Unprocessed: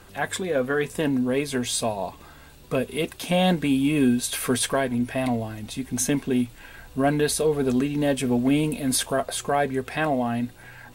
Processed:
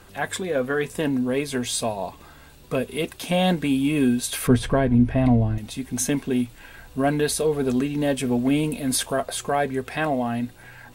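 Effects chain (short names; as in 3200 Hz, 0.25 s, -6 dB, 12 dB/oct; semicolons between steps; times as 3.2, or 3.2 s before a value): 4.47–5.58 RIAA curve playback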